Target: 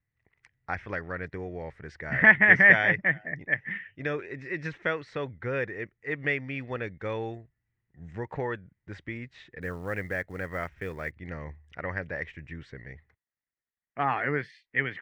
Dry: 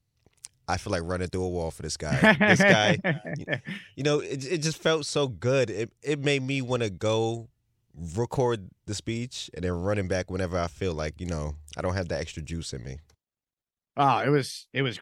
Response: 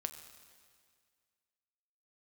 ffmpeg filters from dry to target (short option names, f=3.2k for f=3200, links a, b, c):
-filter_complex "[0:a]lowpass=f=1.9k:t=q:w=7,asplit=3[a][b][c];[a]afade=t=out:st=9.61:d=0.02[d];[b]acrusher=bits=7:mode=log:mix=0:aa=0.000001,afade=t=in:st=9.61:d=0.02,afade=t=out:st=11.1:d=0.02[e];[c]afade=t=in:st=11.1:d=0.02[f];[d][e][f]amix=inputs=3:normalize=0,volume=-8dB"